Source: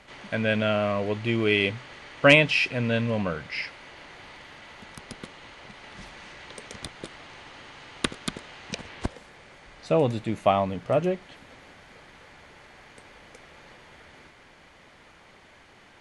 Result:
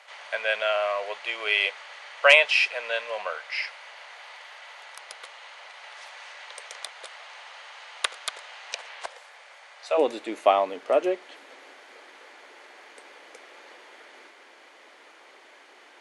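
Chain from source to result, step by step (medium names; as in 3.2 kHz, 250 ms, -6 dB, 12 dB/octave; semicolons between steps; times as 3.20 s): inverse Chebyshev high-pass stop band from 290 Hz, stop band 40 dB, from 9.97 s stop band from 160 Hz; trim +2 dB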